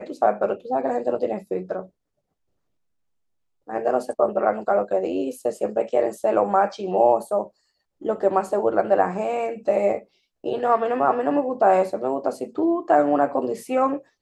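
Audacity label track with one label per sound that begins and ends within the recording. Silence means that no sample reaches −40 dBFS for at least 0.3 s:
3.680000	7.480000	sound
8.010000	10.030000	sound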